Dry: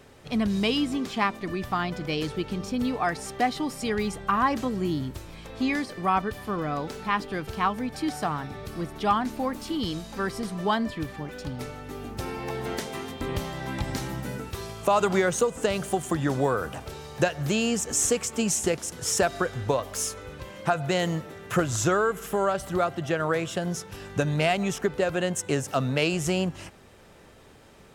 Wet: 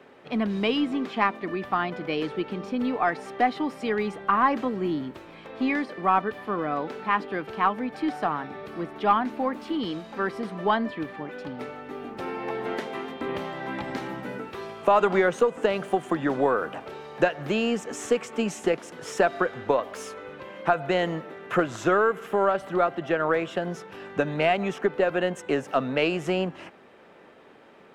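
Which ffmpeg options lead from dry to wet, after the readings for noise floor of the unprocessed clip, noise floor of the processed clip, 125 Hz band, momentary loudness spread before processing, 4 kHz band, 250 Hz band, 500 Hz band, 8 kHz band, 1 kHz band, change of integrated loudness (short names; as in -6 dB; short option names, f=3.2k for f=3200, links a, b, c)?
-52 dBFS, -51 dBFS, -6.5 dB, 11 LU, -3.5 dB, 0.0 dB, +2.5 dB, -14.5 dB, +2.5 dB, +1.0 dB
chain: -filter_complex "[0:a]acrossover=split=190 3200:gain=0.0631 1 0.112[a][b][c];[a][b][c]amix=inputs=3:normalize=0,aeval=exprs='0.376*(cos(1*acos(clip(val(0)/0.376,-1,1)))-cos(1*PI/2))+0.00944*(cos(4*acos(clip(val(0)/0.376,-1,1)))-cos(4*PI/2))':c=same,volume=2.5dB"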